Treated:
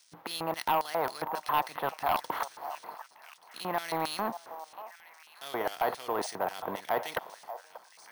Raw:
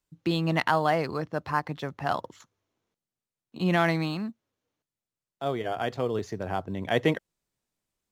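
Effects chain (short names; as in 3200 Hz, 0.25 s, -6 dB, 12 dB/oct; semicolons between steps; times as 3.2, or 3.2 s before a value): per-bin compression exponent 0.6; gate -56 dBFS, range -11 dB; reverse; compressor 4:1, threshold -34 dBFS, peak gain reduction 15.5 dB; reverse; crackle 590/s -55 dBFS; LFO band-pass square 3.7 Hz 930–5800 Hz; in parallel at -5 dB: sine folder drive 16 dB, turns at -17.5 dBFS; on the sum: delay with a stepping band-pass 0.586 s, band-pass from 800 Hz, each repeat 1.4 oct, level -10 dB; careless resampling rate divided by 3×, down filtered, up hold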